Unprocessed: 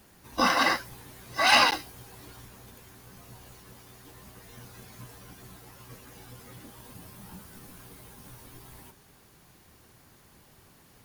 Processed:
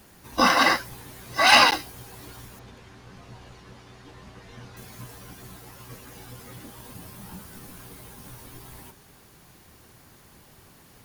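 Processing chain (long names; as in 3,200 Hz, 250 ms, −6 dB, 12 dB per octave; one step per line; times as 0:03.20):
0:02.59–0:04.77: low-pass filter 4,700 Hz 12 dB per octave
level +4.5 dB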